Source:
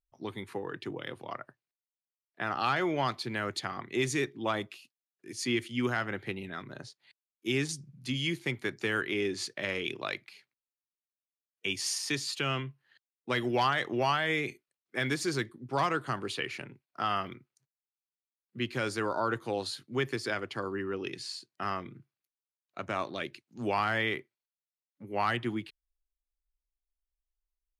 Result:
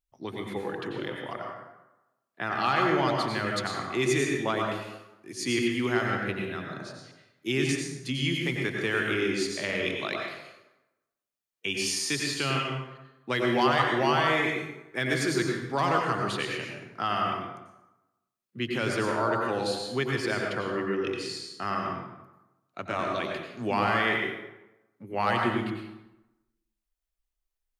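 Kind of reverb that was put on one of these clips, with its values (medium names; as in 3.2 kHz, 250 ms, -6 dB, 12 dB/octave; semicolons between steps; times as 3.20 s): plate-style reverb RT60 1 s, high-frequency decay 0.65×, pre-delay 80 ms, DRR 0 dB; trim +1.5 dB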